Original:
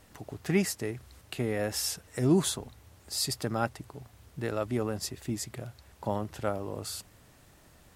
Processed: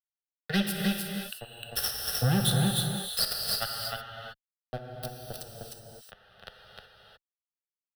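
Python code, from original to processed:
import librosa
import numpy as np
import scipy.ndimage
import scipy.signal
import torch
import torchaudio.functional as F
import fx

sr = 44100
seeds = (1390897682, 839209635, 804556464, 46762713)

p1 = fx.bin_expand(x, sr, power=3.0)
p2 = fx.tone_stack(p1, sr, knobs='6-0-2')
p3 = fx.vibrato(p2, sr, rate_hz=1.3, depth_cents=45.0)
p4 = fx.fuzz(p3, sr, gain_db=49.0, gate_db=-52.0)
p5 = fx.fixed_phaser(p4, sr, hz=1500.0, stages=8)
p6 = p5 + fx.echo_single(p5, sr, ms=306, db=-4.0, dry=0)
p7 = fx.rev_gated(p6, sr, seeds[0], gate_ms=390, shape='flat', drr_db=2.0)
y = fx.band_squash(p7, sr, depth_pct=40)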